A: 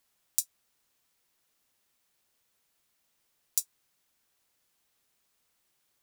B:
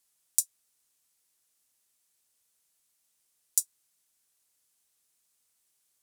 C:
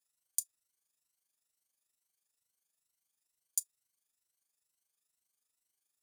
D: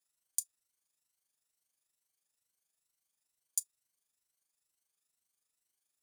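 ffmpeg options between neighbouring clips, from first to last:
ffmpeg -i in.wav -af "equalizer=frequency=9200:width_type=o:width=1.7:gain=13,volume=-7.5dB" out.wav
ffmpeg -i in.wav -af "afftfilt=real='re*pow(10,10/40*sin(2*PI*(2*log(max(b,1)*sr/1024/100)/log(2)-(2.2)*(pts-256)/sr)))':imag='im*pow(10,10/40*sin(2*PI*(2*log(max(b,1)*sr/1024/100)/log(2)-(2.2)*(pts-256)/sr)))':win_size=1024:overlap=0.75,tremolo=f=25:d=0.621,volume=-8.5dB" out.wav
ffmpeg -i in.wav -af "equalizer=frequency=14000:width=7.1:gain=-8" out.wav

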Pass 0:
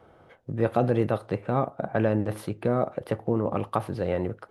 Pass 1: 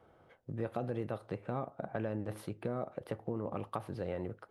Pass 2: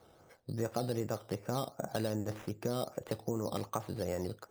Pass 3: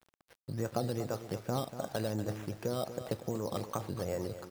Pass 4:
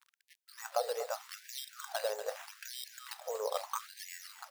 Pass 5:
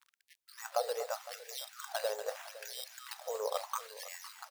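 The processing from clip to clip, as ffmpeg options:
ffmpeg -i in.wav -af "acompressor=threshold=-25dB:ratio=3,volume=-8.5dB" out.wav
ffmpeg -i in.wav -af "acrusher=samples=8:mix=1:aa=0.000001:lfo=1:lforange=4.8:lforate=2.6,volume=2dB" out.wav
ffmpeg -i in.wav -af "aphaser=in_gain=1:out_gain=1:delay=2.3:decay=0.21:speed=1.3:type=triangular,aecho=1:1:239|478|717:0.266|0.0825|0.0256,aeval=exprs='val(0)*gte(abs(val(0)),0.00237)':channel_layout=same" out.wav
ffmpeg -i in.wav -af "afftfilt=real='re*gte(b*sr/1024,400*pow(1700/400,0.5+0.5*sin(2*PI*0.8*pts/sr)))':imag='im*gte(b*sr/1024,400*pow(1700/400,0.5+0.5*sin(2*PI*0.8*pts/sr)))':win_size=1024:overlap=0.75,volume=3.5dB" out.wav
ffmpeg -i in.wav -af "aecho=1:1:509:0.15" out.wav

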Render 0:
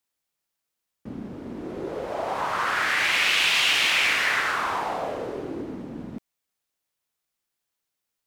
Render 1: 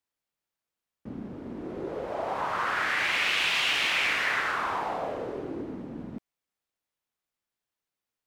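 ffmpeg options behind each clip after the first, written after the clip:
ffmpeg -i in.wav -af "highshelf=frequency=3800:gain=-7.5,volume=-2.5dB" out.wav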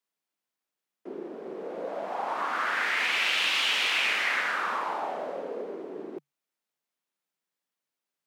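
ffmpeg -i in.wav -af "afreqshift=140" out.wav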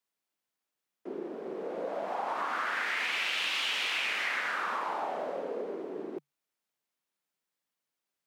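ffmpeg -i in.wav -af "acompressor=threshold=-30dB:ratio=3" out.wav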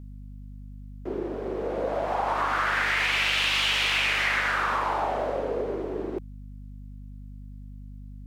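ffmpeg -i in.wav -af "aeval=exprs='val(0)+0.00447*(sin(2*PI*50*n/s)+sin(2*PI*2*50*n/s)/2+sin(2*PI*3*50*n/s)/3+sin(2*PI*4*50*n/s)/4+sin(2*PI*5*50*n/s)/5)':channel_layout=same,volume=7dB" out.wav

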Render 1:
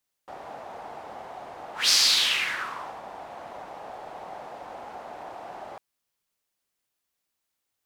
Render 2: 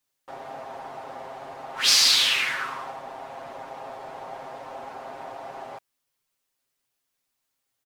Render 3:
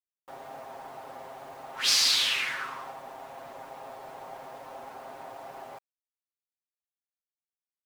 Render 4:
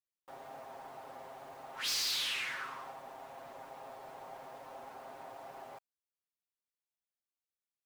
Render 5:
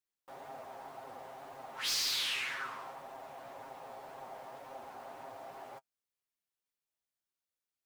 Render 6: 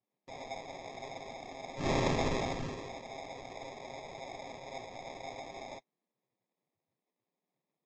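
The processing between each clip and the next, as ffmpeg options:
ffmpeg -i in.wav -af "aecho=1:1:7.5:0.79" out.wav
ffmpeg -i in.wav -af "acrusher=bits=8:mix=0:aa=0.000001,volume=-5dB" out.wav
ffmpeg -i in.wav -af "asoftclip=type=tanh:threshold=-25dB,volume=-5.5dB" out.wav
ffmpeg -i in.wav -af "flanger=delay=7.3:depth=9.8:regen=35:speed=1.9:shape=sinusoidal,volume=4.5dB" out.wav
ffmpeg -i in.wav -af "flanger=delay=2.5:depth=8.8:regen=40:speed=0.69:shape=triangular,acrusher=samples=30:mix=1:aa=0.000001,volume=7dB" -ar 16000 -c:a libvorbis -b:a 64k out.ogg

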